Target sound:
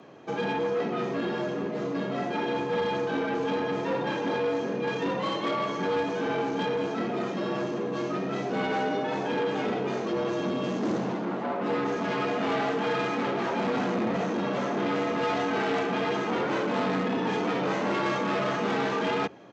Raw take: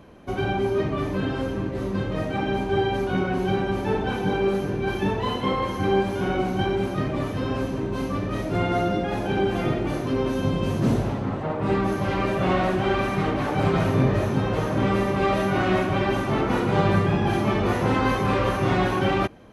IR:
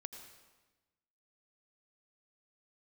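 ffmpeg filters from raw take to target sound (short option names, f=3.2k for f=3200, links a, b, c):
-af "aresample=16000,asoftclip=type=tanh:threshold=-22.5dB,aresample=44100,lowshelf=f=150:g=-4.5,afreqshift=87"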